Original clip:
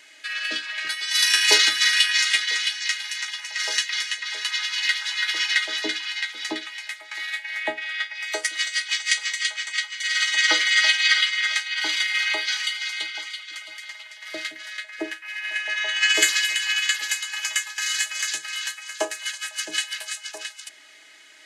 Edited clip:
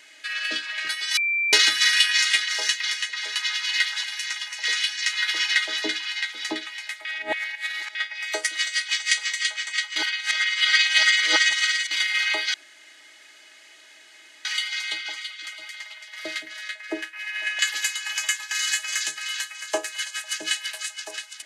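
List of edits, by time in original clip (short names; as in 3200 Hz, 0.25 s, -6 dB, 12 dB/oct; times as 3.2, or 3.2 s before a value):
1.17–1.53 bleep 2350 Hz -20.5 dBFS
2.48–2.96 swap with 3.57–5.13
7.05–7.95 reverse
9.96–11.91 reverse
12.54 insert room tone 1.91 s
15.68–16.86 cut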